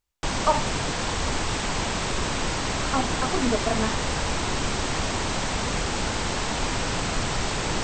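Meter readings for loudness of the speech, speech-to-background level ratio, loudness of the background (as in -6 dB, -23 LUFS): -28.5 LUFS, -2.0 dB, -26.5 LUFS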